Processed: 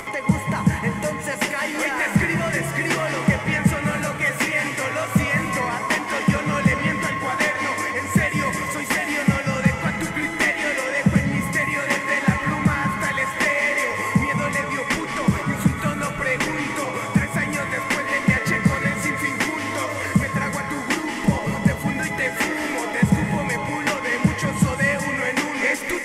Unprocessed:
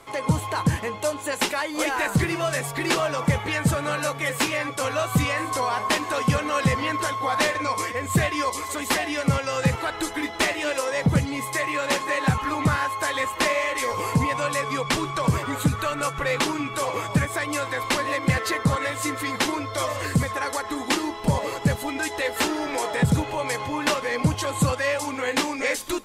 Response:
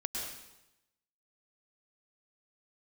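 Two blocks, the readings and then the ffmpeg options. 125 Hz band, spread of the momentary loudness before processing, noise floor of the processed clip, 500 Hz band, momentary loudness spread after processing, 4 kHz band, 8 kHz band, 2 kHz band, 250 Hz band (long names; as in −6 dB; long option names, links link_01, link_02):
+2.0 dB, 4 LU, −29 dBFS, −0.5 dB, 4 LU, −2.5 dB, −0.5 dB, +5.5 dB, +4.5 dB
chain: -filter_complex "[0:a]acompressor=mode=upward:threshold=-24dB:ratio=2.5,equalizer=frequency=200:width_type=o:width=0.33:gain=11,equalizer=frequency=2000:width_type=o:width=0.33:gain=10,equalizer=frequency=4000:width_type=o:width=0.33:gain=-9,asplit=2[link_01][link_02];[1:a]atrim=start_sample=2205,asetrate=25578,aresample=44100[link_03];[link_02][link_03]afir=irnorm=-1:irlink=0,volume=-6.5dB[link_04];[link_01][link_04]amix=inputs=2:normalize=0,volume=-5.5dB"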